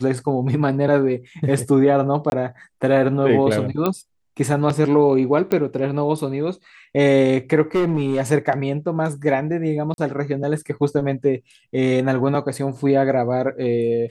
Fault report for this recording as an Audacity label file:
2.300000	2.320000	drop-out 21 ms
3.860000	3.860000	click −8 dBFS
5.520000	5.520000	click −9 dBFS
7.750000	8.210000	clipping −14.5 dBFS
9.940000	9.980000	drop-out 41 ms

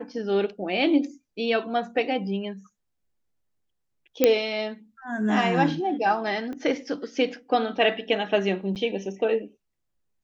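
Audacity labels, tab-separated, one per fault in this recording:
4.240000	4.240000	click −4 dBFS
6.530000	6.530000	click −25 dBFS
8.750000	8.760000	drop-out 8.7 ms

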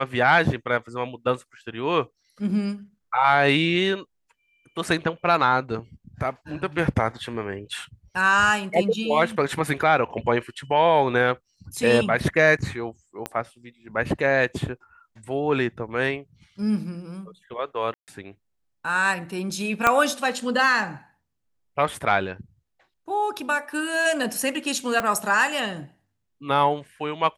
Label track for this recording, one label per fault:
13.260000	13.260000	click −13 dBFS
17.940000	18.080000	drop-out 138 ms
19.870000	19.870000	click −4 dBFS
25.000000	25.000000	click −11 dBFS

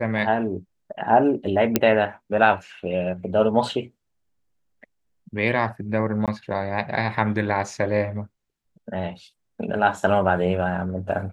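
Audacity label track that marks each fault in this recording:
1.760000	1.760000	click −2 dBFS
6.260000	6.280000	drop-out 17 ms

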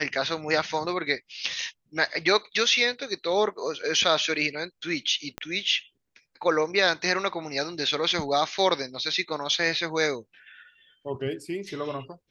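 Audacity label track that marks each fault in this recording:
5.380000	5.380000	click −18 dBFS

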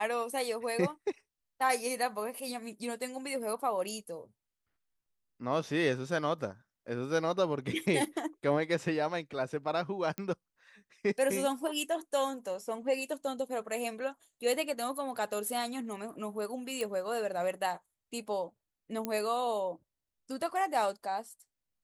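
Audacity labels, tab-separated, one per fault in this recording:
10.180000	10.180000	click −22 dBFS
16.810000	16.810000	click −21 dBFS
19.050000	19.050000	click −18 dBFS

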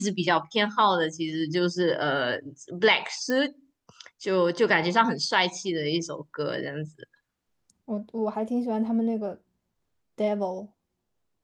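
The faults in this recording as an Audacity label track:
3.300000	3.300000	click −16 dBFS

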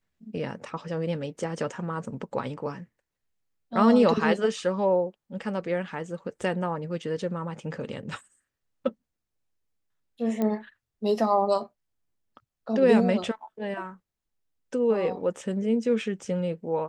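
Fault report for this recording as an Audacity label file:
10.420000	10.420000	click −16 dBFS

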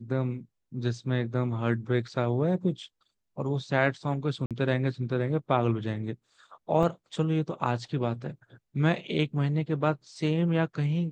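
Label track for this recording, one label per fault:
2.080000	2.080000	drop-out 2.5 ms
4.460000	4.510000	drop-out 47 ms
6.830000	6.830000	drop-out 3.2 ms

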